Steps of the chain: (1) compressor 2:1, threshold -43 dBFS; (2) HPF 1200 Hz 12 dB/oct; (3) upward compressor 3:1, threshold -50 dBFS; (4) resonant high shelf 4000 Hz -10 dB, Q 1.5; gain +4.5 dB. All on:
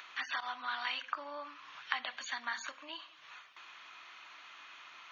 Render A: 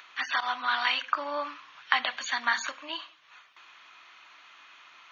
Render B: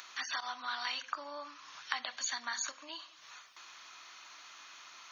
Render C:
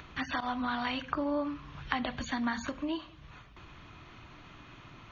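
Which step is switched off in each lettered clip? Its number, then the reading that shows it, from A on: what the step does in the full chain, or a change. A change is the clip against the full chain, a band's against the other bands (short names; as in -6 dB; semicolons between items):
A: 1, mean gain reduction 7.0 dB; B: 4, 4 kHz band +2.5 dB; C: 2, 250 Hz band +23.0 dB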